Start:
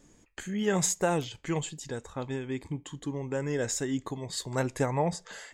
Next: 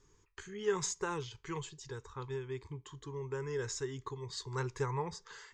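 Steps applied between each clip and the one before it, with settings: FFT filter 130 Hz 0 dB, 180 Hz -12 dB, 280 Hz -15 dB, 410 Hz +3 dB, 640 Hz -24 dB, 990 Hz +4 dB, 1.8 kHz -4 dB, 2.7 kHz -5 dB, 5.9 kHz 0 dB, 13 kHz -28 dB; trim -4 dB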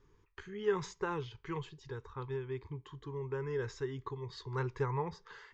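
distance through air 220 m; trim +1.5 dB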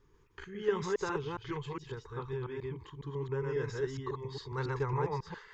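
chunks repeated in reverse 137 ms, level -1 dB

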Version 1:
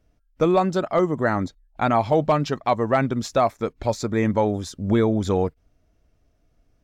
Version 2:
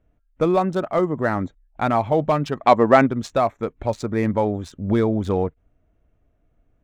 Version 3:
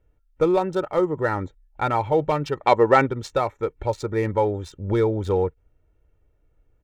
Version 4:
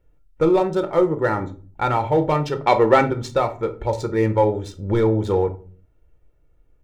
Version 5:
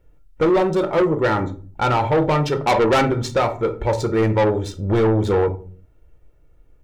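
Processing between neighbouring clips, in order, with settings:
local Wiener filter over 9 samples; time-frequency box 2.59–3.07 s, 210–8100 Hz +7 dB
comb 2.2 ms, depth 63%; trim -2.5 dB
in parallel at -9.5 dB: hard clipper -15.5 dBFS, distortion -11 dB; on the sum: simulated room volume 250 m³, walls furnished, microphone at 0.85 m; trim -1 dB
saturation -18 dBFS, distortion -9 dB; trim +5.5 dB

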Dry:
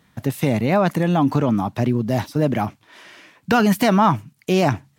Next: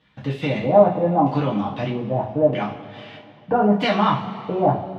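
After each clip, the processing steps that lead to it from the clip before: LFO low-pass square 0.79 Hz 770–3300 Hz; two-slope reverb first 0.33 s, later 2.6 s, from -18 dB, DRR -6 dB; trim -9.5 dB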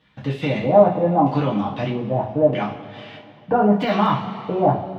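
de-esser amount 90%; trim +1 dB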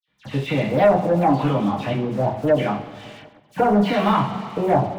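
waveshaping leveller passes 2; phase dispersion lows, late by 82 ms, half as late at 2.5 kHz; trim -6.5 dB

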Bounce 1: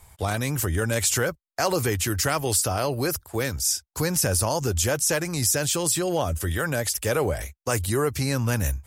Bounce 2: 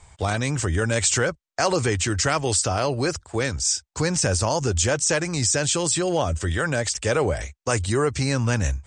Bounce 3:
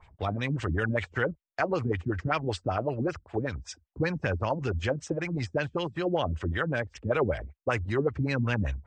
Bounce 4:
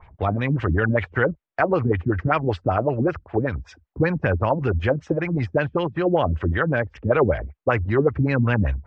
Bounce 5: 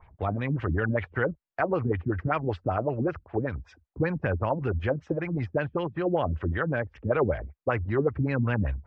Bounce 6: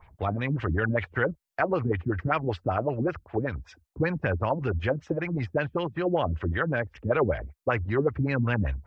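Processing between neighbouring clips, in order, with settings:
Chebyshev low-pass 8.5 kHz, order 6; trim +3 dB
LFO low-pass sine 5.2 Hz 200–3200 Hz; trim -7 dB
low-pass 2.1 kHz 12 dB/octave; trim +8 dB
low-pass 3.4 kHz 6 dB/octave; trim -6 dB
treble shelf 2.7 kHz +8.5 dB

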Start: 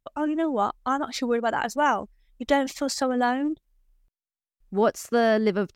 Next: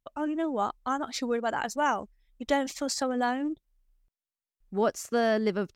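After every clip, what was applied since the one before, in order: dynamic bell 6.8 kHz, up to +4 dB, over -46 dBFS, Q 0.99; trim -4.5 dB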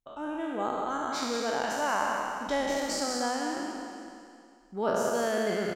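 spectral sustain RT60 2.33 s; on a send: delay 186 ms -5.5 dB; on the sum: trim -6.5 dB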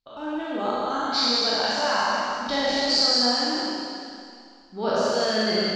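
resonant low-pass 4.5 kHz, resonance Q 7.9; Schroeder reverb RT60 0.66 s, combs from 29 ms, DRR -2 dB

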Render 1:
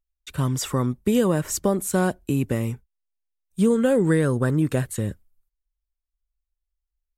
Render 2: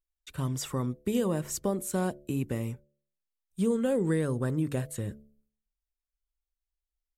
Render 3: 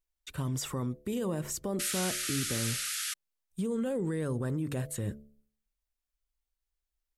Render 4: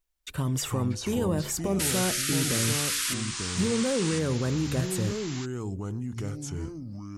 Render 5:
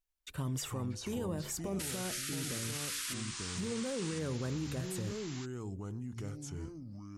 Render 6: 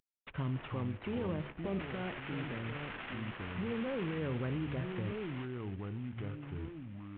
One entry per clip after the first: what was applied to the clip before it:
de-hum 72.15 Hz, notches 9; dynamic bell 1.5 kHz, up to -4 dB, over -41 dBFS, Q 2.2; trim -7.5 dB
peak limiter -27.5 dBFS, peak gain reduction 10.5 dB; painted sound noise, 1.79–3.14 s, 1.2–12 kHz -37 dBFS; trim +2 dB
ever faster or slower copies 239 ms, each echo -4 st, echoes 2, each echo -6 dB; trim +5 dB
peak limiter -20.5 dBFS, peak gain reduction 7.5 dB; trim -8 dB
CVSD coder 16 kbps; trim +1 dB

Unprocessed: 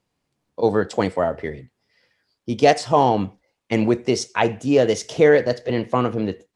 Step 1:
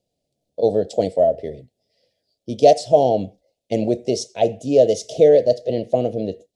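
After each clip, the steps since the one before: FFT filter 350 Hz 0 dB, 650 Hz +11 dB, 1.1 kHz -28 dB, 3.6 kHz +2 dB; trim -3 dB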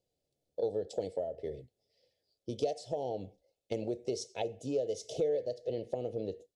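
compression 4:1, threshold -25 dBFS, peak gain reduction 15 dB; comb 2.3 ms, depth 39%; trim -8 dB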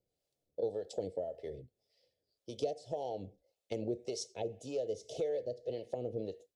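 harmonic tremolo 1.8 Hz, depth 70%, crossover 550 Hz; trim +1 dB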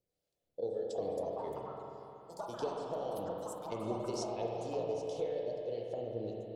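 ever faster or slower copies 538 ms, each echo +6 st, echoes 2, each echo -6 dB; spring tank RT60 3.1 s, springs 34/46 ms, chirp 40 ms, DRR -1 dB; trim -3 dB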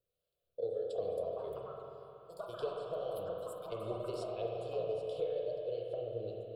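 static phaser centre 1.3 kHz, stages 8; trim +1 dB

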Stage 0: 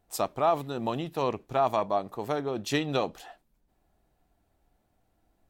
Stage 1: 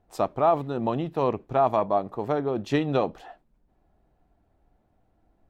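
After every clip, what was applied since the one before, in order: low-pass 1.2 kHz 6 dB/octave; trim +5 dB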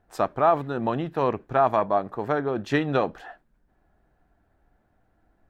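peaking EQ 1.6 kHz +10.5 dB 0.62 oct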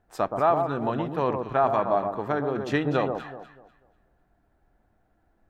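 echo whose repeats swap between lows and highs 123 ms, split 1.1 kHz, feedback 51%, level -5 dB; trim -2 dB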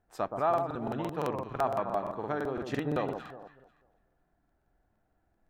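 crackling interface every 0.17 s, samples 2048, repeat, from 0.49 s; trim -6.5 dB

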